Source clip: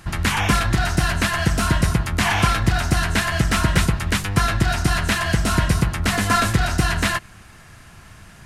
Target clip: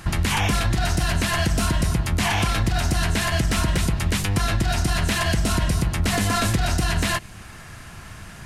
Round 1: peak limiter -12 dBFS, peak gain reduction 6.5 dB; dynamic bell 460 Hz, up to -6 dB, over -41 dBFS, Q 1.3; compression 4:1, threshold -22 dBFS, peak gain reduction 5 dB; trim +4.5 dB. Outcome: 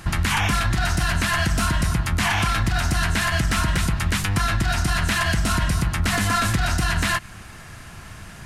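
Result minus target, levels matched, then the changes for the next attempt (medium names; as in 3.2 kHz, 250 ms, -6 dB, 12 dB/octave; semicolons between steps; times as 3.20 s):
500 Hz band -3.5 dB
change: dynamic bell 1.4 kHz, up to -6 dB, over -41 dBFS, Q 1.3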